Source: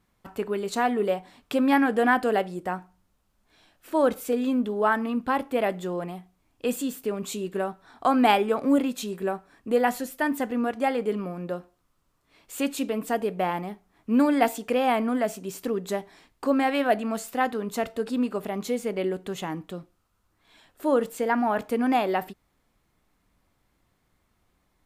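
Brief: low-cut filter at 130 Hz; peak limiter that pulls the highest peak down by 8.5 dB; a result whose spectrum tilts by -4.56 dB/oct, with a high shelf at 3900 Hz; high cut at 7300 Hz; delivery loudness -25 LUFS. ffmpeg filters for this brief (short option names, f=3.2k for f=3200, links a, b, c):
-af "highpass=130,lowpass=7.3k,highshelf=f=3.9k:g=-6,volume=3dB,alimiter=limit=-13dB:level=0:latency=1"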